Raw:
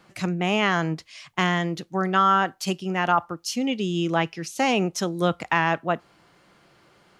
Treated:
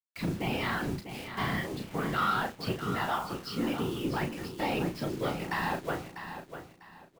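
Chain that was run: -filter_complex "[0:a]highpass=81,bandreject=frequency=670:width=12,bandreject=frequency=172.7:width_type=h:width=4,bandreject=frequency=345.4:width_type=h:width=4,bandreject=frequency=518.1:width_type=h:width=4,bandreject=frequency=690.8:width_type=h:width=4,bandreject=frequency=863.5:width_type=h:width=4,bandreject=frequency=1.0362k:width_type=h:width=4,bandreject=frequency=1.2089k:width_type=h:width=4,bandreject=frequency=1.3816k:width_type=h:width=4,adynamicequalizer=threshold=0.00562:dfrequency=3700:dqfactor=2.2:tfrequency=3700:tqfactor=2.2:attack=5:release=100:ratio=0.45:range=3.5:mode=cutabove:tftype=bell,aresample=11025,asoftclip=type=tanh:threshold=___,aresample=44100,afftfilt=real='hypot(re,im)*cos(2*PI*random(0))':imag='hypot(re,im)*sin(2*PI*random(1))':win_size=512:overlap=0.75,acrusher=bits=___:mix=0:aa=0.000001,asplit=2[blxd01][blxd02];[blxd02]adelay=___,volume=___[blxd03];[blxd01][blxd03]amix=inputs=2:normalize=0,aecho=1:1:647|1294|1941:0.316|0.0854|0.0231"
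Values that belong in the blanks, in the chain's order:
-18dB, 7, 35, -7dB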